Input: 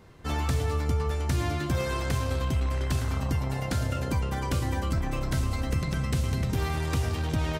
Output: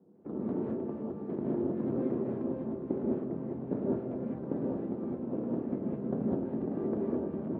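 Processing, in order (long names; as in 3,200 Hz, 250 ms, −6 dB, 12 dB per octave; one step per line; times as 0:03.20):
stylus tracing distortion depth 0.2 ms
spectral tilt +4.5 dB per octave
sample-and-hold swept by an LFO 15×, swing 100% 3.6 Hz
flat-topped band-pass 260 Hz, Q 1.2
reverb whose tail is shaped and stops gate 230 ms rising, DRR −4.5 dB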